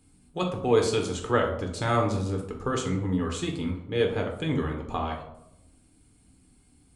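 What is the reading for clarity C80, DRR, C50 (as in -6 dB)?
10.0 dB, 1.0 dB, 7.0 dB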